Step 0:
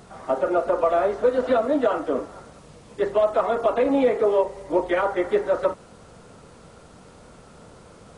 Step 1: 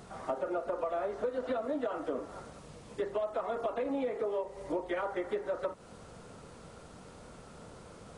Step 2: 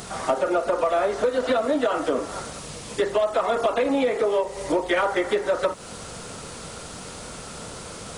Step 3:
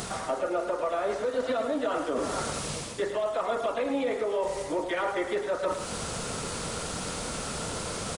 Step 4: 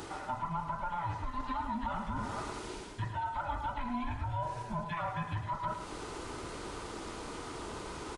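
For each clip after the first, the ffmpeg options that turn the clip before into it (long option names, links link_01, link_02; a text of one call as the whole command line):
ffmpeg -i in.wav -af "acompressor=threshold=-28dB:ratio=5,volume=-3.5dB" out.wav
ffmpeg -i in.wav -filter_complex "[0:a]highshelf=frequency=2100:gain=12,asplit=2[link_01][link_02];[link_02]asoftclip=type=hard:threshold=-27.5dB,volume=-6.5dB[link_03];[link_01][link_03]amix=inputs=2:normalize=0,volume=7.5dB" out.wav
ffmpeg -i in.wav -af "areverse,acompressor=threshold=-30dB:ratio=6,areverse,aecho=1:1:108:0.376,volume=3dB" out.wav
ffmpeg -i in.wav -af "afftfilt=real='real(if(between(b,1,1008),(2*floor((b-1)/24)+1)*24-b,b),0)':imag='imag(if(between(b,1,1008),(2*floor((b-1)/24)+1)*24-b,b),0)*if(between(b,1,1008),-1,1)':win_size=2048:overlap=0.75,lowpass=frequency=2700:poles=1,volume=-6.5dB" out.wav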